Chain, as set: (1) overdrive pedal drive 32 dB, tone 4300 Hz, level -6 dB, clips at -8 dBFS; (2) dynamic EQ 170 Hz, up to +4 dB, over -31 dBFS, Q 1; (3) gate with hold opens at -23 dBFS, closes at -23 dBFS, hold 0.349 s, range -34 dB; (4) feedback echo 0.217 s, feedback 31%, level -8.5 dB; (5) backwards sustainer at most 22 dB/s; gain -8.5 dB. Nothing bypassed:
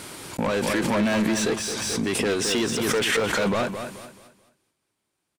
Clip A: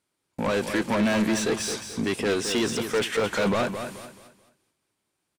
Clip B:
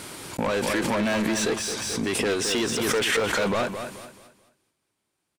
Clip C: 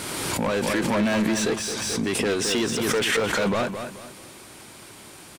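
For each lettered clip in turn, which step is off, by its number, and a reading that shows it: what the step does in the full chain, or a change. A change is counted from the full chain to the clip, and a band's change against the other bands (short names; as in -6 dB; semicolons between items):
5, crest factor change -2.0 dB; 2, 125 Hz band -2.5 dB; 3, momentary loudness spread change +13 LU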